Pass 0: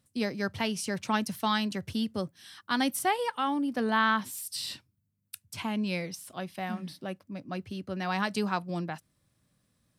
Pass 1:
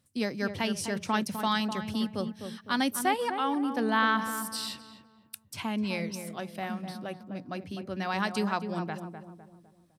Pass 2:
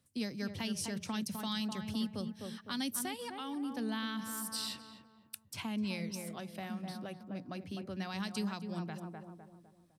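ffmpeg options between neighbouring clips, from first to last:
-filter_complex "[0:a]bandreject=f=60:t=h:w=6,bandreject=f=120:t=h:w=6,bandreject=f=180:t=h:w=6,asplit=2[a][b];[b]adelay=253,lowpass=f=1.2k:p=1,volume=-7dB,asplit=2[c][d];[d]adelay=253,lowpass=f=1.2k:p=1,volume=0.45,asplit=2[e][f];[f]adelay=253,lowpass=f=1.2k:p=1,volume=0.45,asplit=2[g][h];[h]adelay=253,lowpass=f=1.2k:p=1,volume=0.45,asplit=2[i][j];[j]adelay=253,lowpass=f=1.2k:p=1,volume=0.45[k];[c][e][g][i][k]amix=inputs=5:normalize=0[l];[a][l]amix=inputs=2:normalize=0"
-filter_complex "[0:a]acrossover=split=240|3000[a][b][c];[b]acompressor=threshold=-40dB:ratio=6[d];[a][d][c]amix=inputs=3:normalize=0,volume=-3dB"

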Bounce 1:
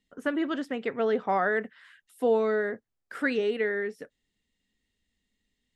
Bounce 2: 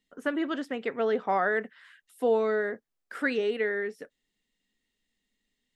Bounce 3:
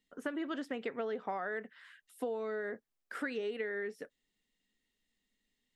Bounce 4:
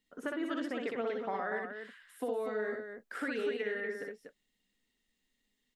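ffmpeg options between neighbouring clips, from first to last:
-af "equalizer=f=69:w=0.81:g=-13"
-af "acompressor=threshold=-31dB:ratio=10,volume=-2.5dB"
-af "aecho=1:1:61|241:0.708|0.473"

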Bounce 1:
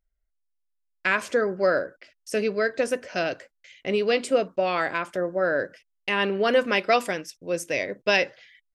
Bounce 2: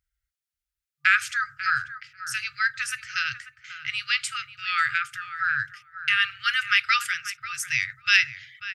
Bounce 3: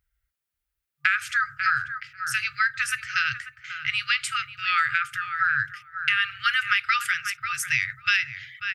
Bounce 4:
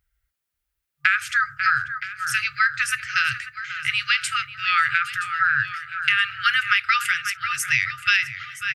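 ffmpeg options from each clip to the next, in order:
-filter_complex "[0:a]afftfilt=real='re*(1-between(b*sr/4096,140,1200))':imag='im*(1-between(b*sr/4096,140,1200))':win_size=4096:overlap=0.75,highpass=64,asplit=2[a][b];[b]adelay=541,lowpass=f=1.2k:p=1,volume=-9dB,asplit=2[c][d];[d]adelay=541,lowpass=f=1.2k:p=1,volume=0.16[e];[a][c][e]amix=inputs=3:normalize=0,volume=5dB"
-af "equalizer=f=6k:w=0.65:g=-7,acompressor=threshold=-25dB:ratio=6,volume=6.5dB"
-af "aecho=1:1:972|1944|2916:0.188|0.0565|0.017,volume=3dB"

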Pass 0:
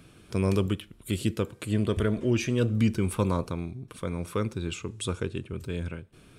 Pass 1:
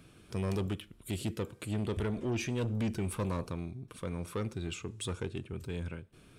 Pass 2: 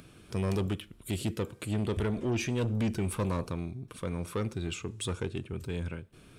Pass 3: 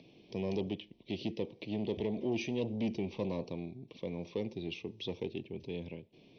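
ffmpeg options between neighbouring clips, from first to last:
-af "asoftclip=type=tanh:threshold=-23.5dB,volume=-4dB"
-af "acompressor=mode=upward:threshold=-55dB:ratio=2.5,volume=3dB"
-filter_complex "[0:a]asuperstop=centerf=1400:order=4:qfactor=0.93,acrossover=split=160 5000:gain=0.126 1 0.141[a][b][c];[a][b][c]amix=inputs=3:normalize=0,volume=-1.5dB" -ar 44100 -c:a ac3 -b:a 48k

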